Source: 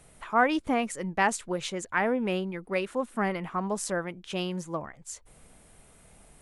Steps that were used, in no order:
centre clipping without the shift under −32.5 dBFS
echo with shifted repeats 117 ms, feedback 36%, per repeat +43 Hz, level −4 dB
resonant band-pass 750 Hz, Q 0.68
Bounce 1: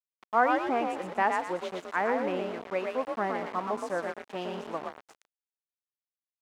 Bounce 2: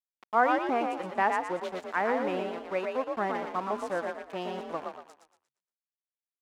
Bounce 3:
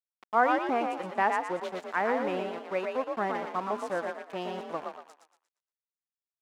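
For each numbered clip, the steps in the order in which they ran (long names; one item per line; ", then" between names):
echo with shifted repeats, then centre clipping without the shift, then resonant band-pass
centre clipping without the shift, then echo with shifted repeats, then resonant band-pass
centre clipping without the shift, then resonant band-pass, then echo with shifted repeats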